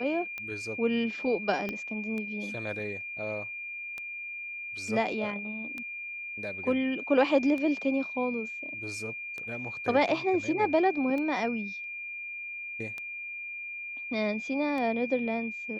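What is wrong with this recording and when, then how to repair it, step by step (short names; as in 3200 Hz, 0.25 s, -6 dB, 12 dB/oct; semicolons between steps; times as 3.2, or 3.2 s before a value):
tick 33 1/3 rpm -24 dBFS
tone 2400 Hz -36 dBFS
1.69 pop -20 dBFS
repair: de-click; notch 2400 Hz, Q 30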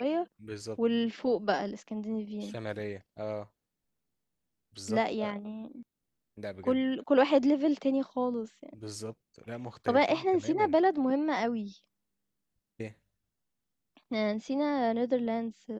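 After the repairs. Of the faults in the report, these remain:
1.69 pop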